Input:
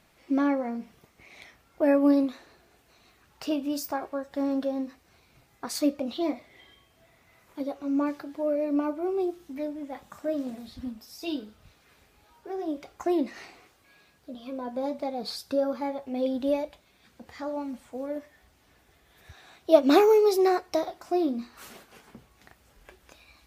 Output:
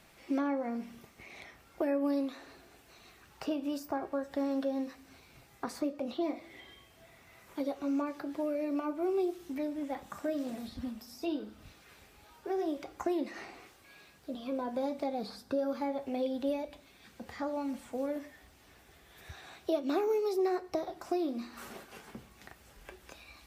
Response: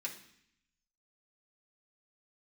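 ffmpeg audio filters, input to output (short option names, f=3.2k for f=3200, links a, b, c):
-filter_complex "[0:a]acrossover=split=390|1600[a][b][c];[a]acompressor=threshold=-39dB:ratio=4[d];[b]acompressor=threshold=-38dB:ratio=4[e];[c]acompressor=threshold=-55dB:ratio=4[f];[d][e][f]amix=inputs=3:normalize=0,asplit=2[g][h];[1:a]atrim=start_sample=2205[i];[h][i]afir=irnorm=-1:irlink=0,volume=-9dB[j];[g][j]amix=inputs=2:normalize=0,volume=1.5dB"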